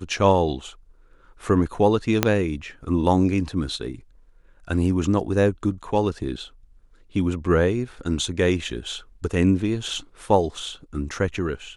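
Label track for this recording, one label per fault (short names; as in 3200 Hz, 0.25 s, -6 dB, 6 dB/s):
2.230000	2.230000	pop -2 dBFS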